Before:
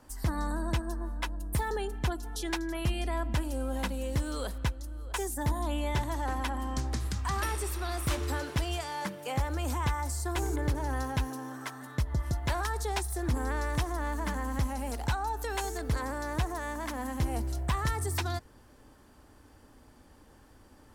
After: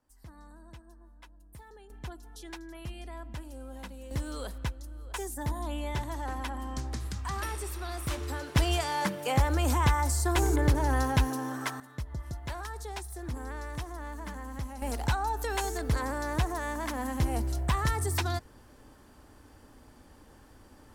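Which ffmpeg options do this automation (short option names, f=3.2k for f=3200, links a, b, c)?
-af "asetnsamples=n=441:p=0,asendcmd='1.9 volume volume -10.5dB;4.11 volume volume -3dB;8.55 volume volume 5.5dB;11.8 volume volume -7dB;14.82 volume volume 2dB',volume=-19.5dB"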